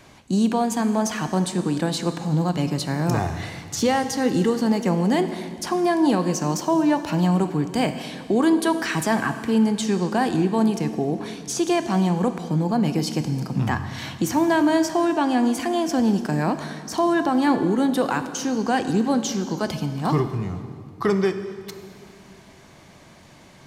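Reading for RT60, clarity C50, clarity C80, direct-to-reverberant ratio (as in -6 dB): 2.4 s, 10.0 dB, 11.0 dB, 9.0 dB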